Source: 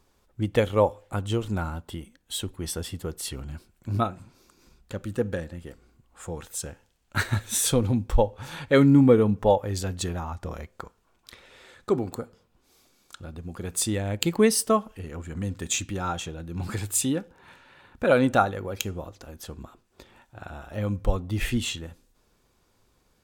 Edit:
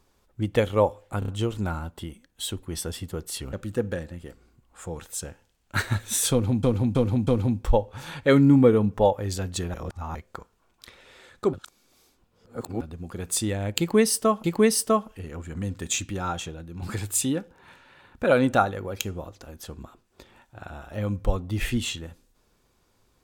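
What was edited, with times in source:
1.19 s: stutter 0.03 s, 4 plays
3.44–4.94 s: delete
7.72–8.04 s: loop, 4 plays
10.19–10.60 s: reverse
11.98–13.26 s: reverse
14.24–14.89 s: loop, 2 plays
16.25–16.62 s: fade out, to -6.5 dB

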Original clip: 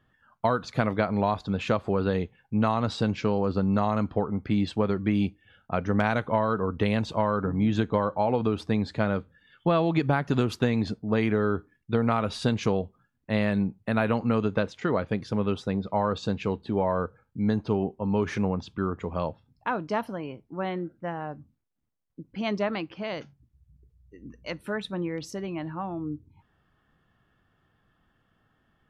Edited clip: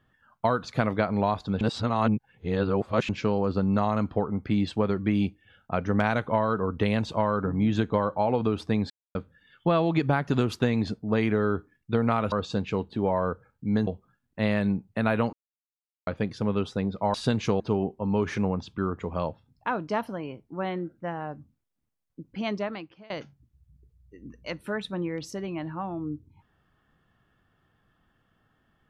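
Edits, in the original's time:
1.61–3.09 s: reverse
8.90–9.15 s: mute
12.32–12.78 s: swap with 16.05–17.60 s
14.24–14.98 s: mute
22.38–23.10 s: fade out, to -22.5 dB

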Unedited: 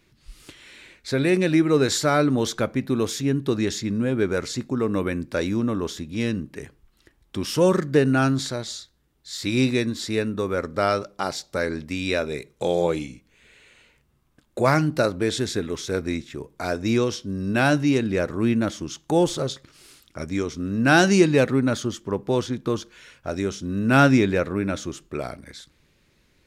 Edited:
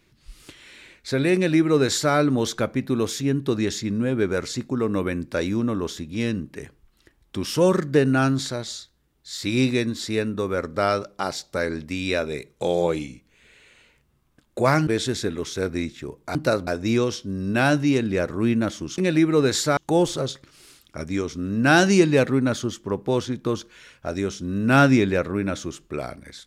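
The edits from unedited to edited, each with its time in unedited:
1.35–2.14 s: copy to 18.98 s
14.87–15.19 s: move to 16.67 s

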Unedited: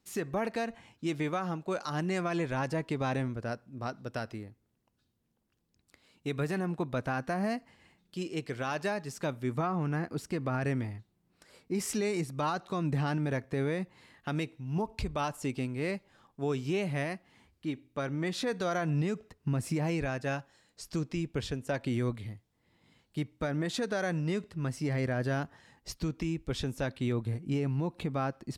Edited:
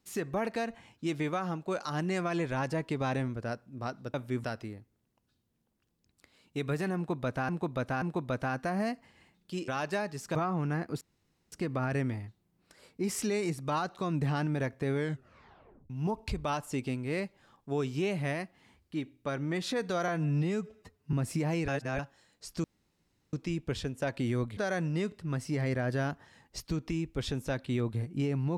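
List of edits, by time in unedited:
6.66–7.19 s: loop, 3 plays
8.32–8.60 s: delete
9.27–9.57 s: move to 4.14 s
10.23 s: insert room tone 0.51 s
13.65 s: tape stop 0.96 s
18.79–19.49 s: stretch 1.5×
20.04–20.35 s: reverse
21.00 s: insert room tone 0.69 s
22.24–23.89 s: delete

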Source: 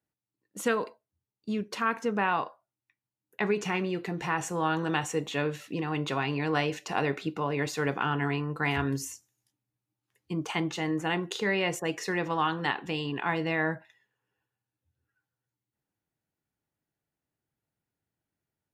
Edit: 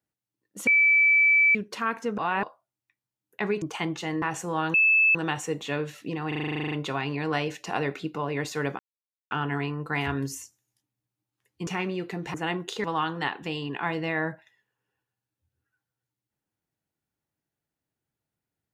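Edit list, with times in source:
0.67–1.55 s: bleep 2.31 kHz -16 dBFS
2.18–2.43 s: reverse
3.62–4.29 s: swap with 10.37–10.97 s
4.81 s: add tone 2.62 kHz -16.5 dBFS 0.41 s
5.94 s: stutter 0.04 s, 12 plays
8.01 s: insert silence 0.52 s
11.47–12.27 s: delete

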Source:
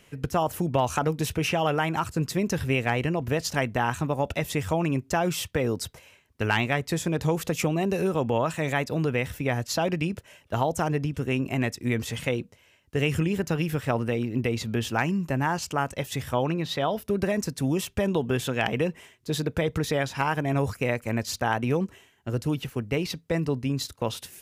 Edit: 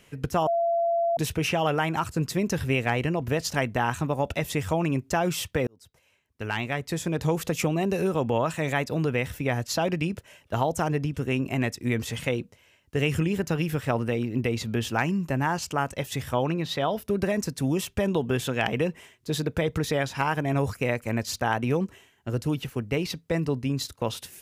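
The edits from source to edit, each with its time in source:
0.47–1.17 s: bleep 679 Hz -21 dBFS
5.67–7.31 s: fade in

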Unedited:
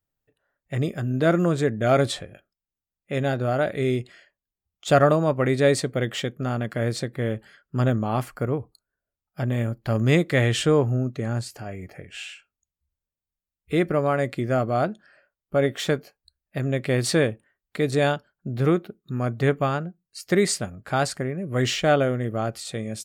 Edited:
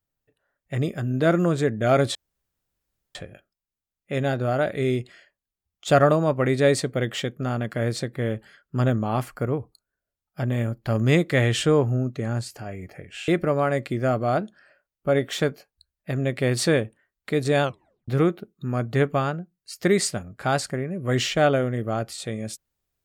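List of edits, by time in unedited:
2.15 s: insert room tone 1.00 s
12.28–13.75 s: delete
18.10 s: tape stop 0.45 s

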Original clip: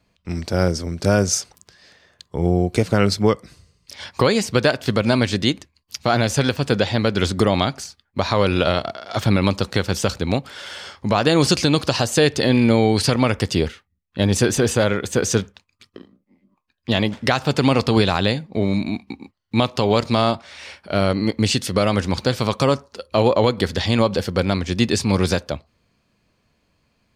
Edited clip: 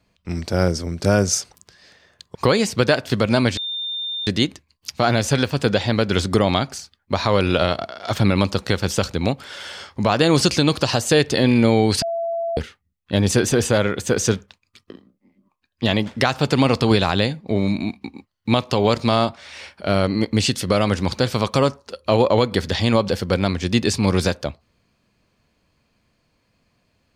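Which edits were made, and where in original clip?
2.35–4.11 s: delete
5.33 s: add tone 3.61 kHz -24 dBFS 0.70 s
13.08–13.63 s: bleep 672 Hz -21 dBFS

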